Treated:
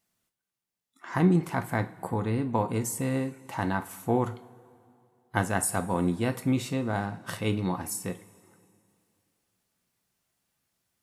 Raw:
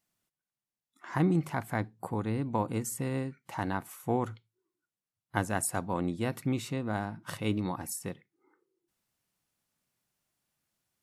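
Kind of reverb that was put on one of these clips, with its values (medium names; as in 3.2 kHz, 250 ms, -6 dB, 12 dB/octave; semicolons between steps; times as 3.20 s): two-slope reverb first 0.29 s, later 2.6 s, from -21 dB, DRR 7 dB; trim +3 dB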